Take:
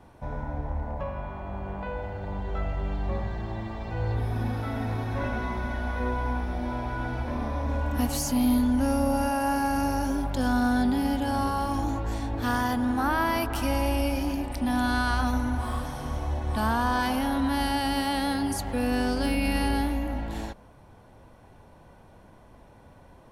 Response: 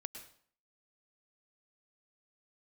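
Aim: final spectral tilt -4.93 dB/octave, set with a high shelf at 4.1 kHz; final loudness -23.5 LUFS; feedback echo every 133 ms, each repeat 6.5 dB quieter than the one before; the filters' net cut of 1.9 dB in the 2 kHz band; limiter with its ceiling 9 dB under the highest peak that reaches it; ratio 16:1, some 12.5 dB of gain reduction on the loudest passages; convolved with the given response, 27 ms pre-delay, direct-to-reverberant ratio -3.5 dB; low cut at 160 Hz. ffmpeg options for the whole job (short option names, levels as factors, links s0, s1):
-filter_complex "[0:a]highpass=160,equalizer=f=2000:t=o:g=-3.5,highshelf=f=4100:g=4,acompressor=threshold=0.02:ratio=16,alimiter=level_in=2.11:limit=0.0631:level=0:latency=1,volume=0.473,aecho=1:1:133|266|399|532|665|798:0.473|0.222|0.105|0.0491|0.0231|0.0109,asplit=2[s0][s1];[1:a]atrim=start_sample=2205,adelay=27[s2];[s1][s2]afir=irnorm=-1:irlink=0,volume=2.11[s3];[s0][s3]amix=inputs=2:normalize=0,volume=3.16"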